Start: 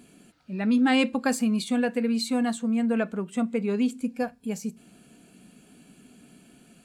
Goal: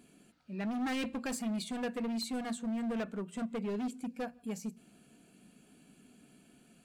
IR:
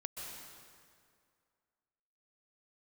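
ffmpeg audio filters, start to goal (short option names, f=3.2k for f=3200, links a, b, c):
-filter_complex "[0:a]volume=25dB,asoftclip=hard,volume=-25dB,bandreject=f=60:t=h:w=6,bandreject=f=120:t=h:w=6,bandreject=f=180:t=h:w=6,bandreject=f=240:t=h:w=6,asplit=2[a][b];[1:a]atrim=start_sample=2205,afade=t=out:st=0.23:d=0.01,atrim=end_sample=10584,lowpass=3.6k[c];[b][c]afir=irnorm=-1:irlink=0,volume=-20dB[d];[a][d]amix=inputs=2:normalize=0,volume=-7.5dB"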